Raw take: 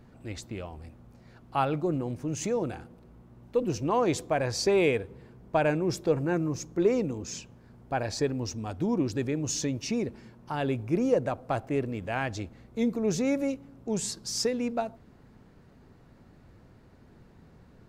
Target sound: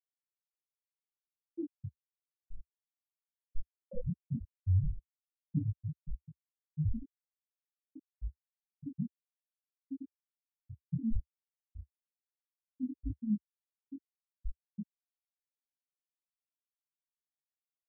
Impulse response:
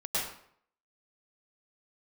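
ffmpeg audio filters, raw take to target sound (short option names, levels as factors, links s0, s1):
-af "bandreject=f=60:t=h:w=6,bandreject=f=120:t=h:w=6,bandreject=f=180:t=h:w=6,bandreject=f=240:t=h:w=6,bandreject=f=300:t=h:w=6,bandreject=f=360:t=h:w=6,afftfilt=real='re*gte(hypot(re,im),0.501)':imag='im*gte(hypot(re,im),0.501)':win_size=1024:overlap=0.75,highpass=150,equalizer=f=3600:t=o:w=1.4:g=-8,bandreject=f=420:w=13,afreqshift=-490,flanger=delay=18.5:depth=4.3:speed=0.14"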